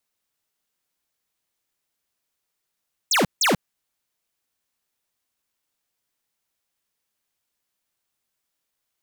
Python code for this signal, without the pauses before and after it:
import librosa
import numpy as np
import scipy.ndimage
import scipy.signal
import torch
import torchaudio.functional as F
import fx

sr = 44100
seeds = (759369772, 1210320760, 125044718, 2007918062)

y = fx.laser_zaps(sr, level_db=-18.5, start_hz=8500.0, end_hz=140.0, length_s=0.14, wave='square', shots=2, gap_s=0.16)